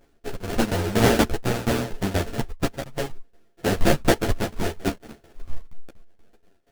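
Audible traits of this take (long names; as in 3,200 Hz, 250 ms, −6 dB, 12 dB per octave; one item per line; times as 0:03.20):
a buzz of ramps at a fixed pitch in blocks of 64 samples
tremolo saw down 4.2 Hz, depth 90%
aliases and images of a low sample rate 1,100 Hz, jitter 20%
a shimmering, thickened sound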